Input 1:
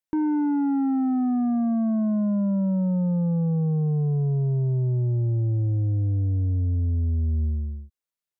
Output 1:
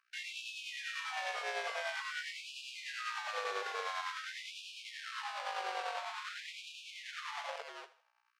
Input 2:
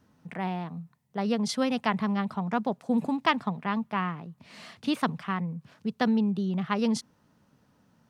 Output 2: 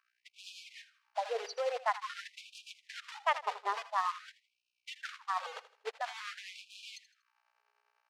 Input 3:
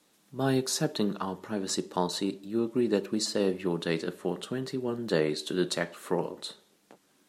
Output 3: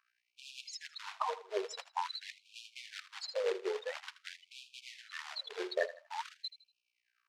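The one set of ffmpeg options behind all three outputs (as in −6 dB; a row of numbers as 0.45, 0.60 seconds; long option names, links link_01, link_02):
-filter_complex "[0:a]afftfilt=real='re*gte(hypot(re,im),0.0794)':imag='im*gte(hypot(re,im),0.0794)':win_size=1024:overlap=0.75,aemphasis=mode=production:type=cd,areverse,acompressor=threshold=-38dB:ratio=5,areverse,aeval=exprs='val(0)+0.000282*(sin(2*PI*60*n/s)+sin(2*PI*2*60*n/s)/2+sin(2*PI*3*60*n/s)/3+sin(2*PI*4*60*n/s)/4+sin(2*PI*5*60*n/s)/5)':channel_layout=same,asplit=2[link_01][link_02];[link_02]adynamicsmooth=sensitivity=1.5:basefreq=1800,volume=1.5dB[link_03];[link_01][link_03]amix=inputs=2:normalize=0,acrusher=bits=3:mode=log:mix=0:aa=0.000001,highpass=270,lowpass=4300,tremolo=f=10:d=0.41,aecho=1:1:80|160|240:0.178|0.064|0.023,afftfilt=real='re*gte(b*sr/1024,370*pow(2400/370,0.5+0.5*sin(2*PI*0.48*pts/sr)))':imag='im*gte(b*sr/1024,370*pow(2400/370,0.5+0.5*sin(2*PI*0.48*pts/sr)))':win_size=1024:overlap=0.75,volume=7dB"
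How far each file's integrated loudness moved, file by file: −16.5, −9.0, −10.5 LU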